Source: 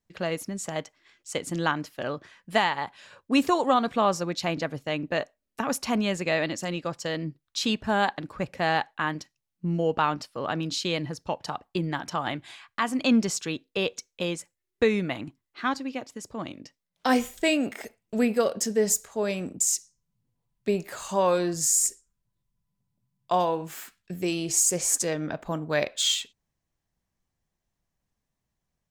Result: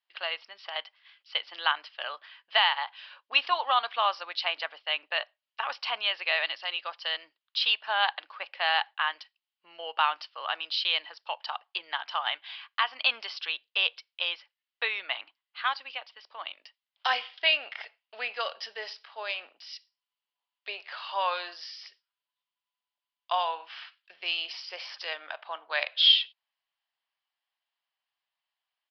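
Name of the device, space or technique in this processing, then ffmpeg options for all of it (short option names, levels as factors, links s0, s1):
musical greeting card: -af "aresample=11025,aresample=44100,highpass=f=800:w=0.5412,highpass=f=800:w=1.3066,equalizer=f=3000:t=o:w=0.39:g=9.5"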